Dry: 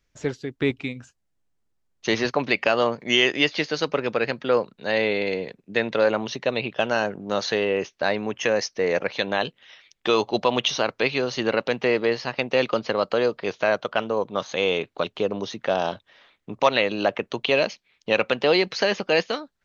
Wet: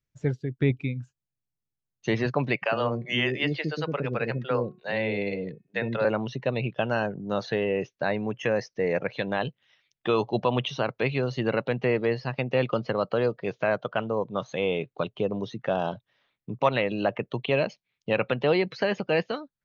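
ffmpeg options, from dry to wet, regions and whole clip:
-filter_complex "[0:a]asettb=1/sr,asplit=3[a][b][c];[a]atrim=end=2.564[d];[b]atrim=start=2.56:end=6.05,asetpts=PTS-STARTPTS,afade=t=in:d=0.004:c=qsin,afade=t=out:st=3.486:d=0.004:c=qsin,bandreject=f=363.3:t=h:w=4,bandreject=f=726.6:t=h:w=4,bandreject=f=1.0899k:t=h:w=4,bandreject=f=1.4532k:t=h:w=4,bandreject=f=1.8165k:t=h:w=4,bandreject=f=2.1798k:t=h:w=4,bandreject=f=2.5431k:t=h:w=4,acrossover=split=450[e][f];[e]adelay=60[g];[g][f]amix=inputs=2:normalize=0,atrim=end_sample=153909[h];[c]atrim=start=6.046[i];[d][h]acrossfade=d=0.004:c1=hsin:c2=qsin[j];[j][i]acrossfade=d=0.004:c1=qsin:c2=hsin,afftdn=nr=12:nf=-35,acrossover=split=3000[k][l];[l]acompressor=threshold=-41dB:ratio=4:attack=1:release=60[m];[k][m]amix=inputs=2:normalize=0,equalizer=f=130:t=o:w=0.96:g=12.5,volume=-4dB"

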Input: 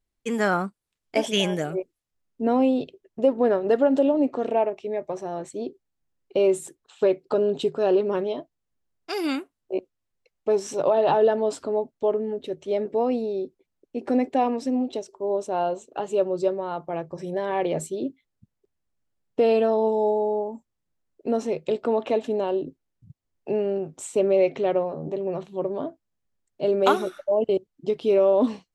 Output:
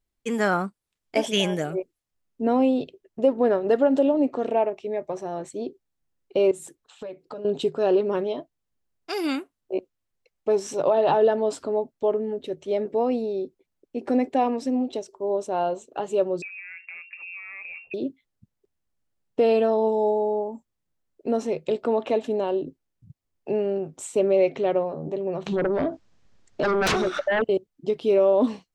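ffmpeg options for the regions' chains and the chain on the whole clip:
-filter_complex "[0:a]asettb=1/sr,asplit=3[a][b][c];[a]atrim=end=6.514[d];[b]atrim=start=6.51:end=7.45,asetpts=PTS-STARTPTS,afade=t=in:d=0.004:c=qsin,afade=t=out:st=0.936:d=0.004:c=qsin,bandreject=f=390:w=7.7,acompressor=threshold=-37dB:ratio=3:attack=3.2:release=140:knee=1:detection=peak[e];[c]atrim=start=7.446[f];[d][e]acrossfade=d=0.004:c1=hsin:c2=qsin[g];[g][f]acrossfade=d=0.004:c1=qsin:c2=hsin,asettb=1/sr,asplit=3[h][i][j];[h]atrim=end=16.424[k];[i]atrim=start=16.42:end=17.94,asetpts=PTS-STARTPTS,afade=t=in:d=0.004:c=qsin,afade=t=out:st=1.516:d=0.004:c=qsin,acompressor=threshold=-36dB:ratio=6:attack=3.2:release=140:knee=1:detection=peak,lowpass=f=2.5k:t=q:w=0.5098,lowpass=f=2.5k:t=q:w=0.6013,lowpass=f=2.5k:t=q:w=0.9,lowpass=f=2.5k:t=q:w=2.563,afreqshift=-2900[l];[j]atrim=start=17.936[m];[k][l]acrossfade=d=0.004:c1=hsin:c2=qsin[n];[n][m]acrossfade=d=0.004:c1=qsin:c2=hsin,asettb=1/sr,asplit=3[o][p][q];[o]atrim=end=25.464[r];[p]atrim=start=25.46:end=27.42,asetpts=PTS-STARTPTS,afade=t=in:d=0.004:c=qsin,afade=t=out:st=1.956:d=0.004:c=qsin,lowpass=f=6.6k:w=0.5412,lowpass=f=6.6k:w=1.3066,aeval=exprs='0.531*sin(PI/2*6.31*val(0)/0.531)':c=same,acompressor=threshold=-22dB:ratio=6:attack=3.2:release=140:knee=1:detection=peak[s];[q]atrim=start=27.416[t];[r][s]acrossfade=d=0.004:c1=hsin:c2=qsin[u];[u][t]acrossfade=d=0.004:c1=qsin:c2=hsin"

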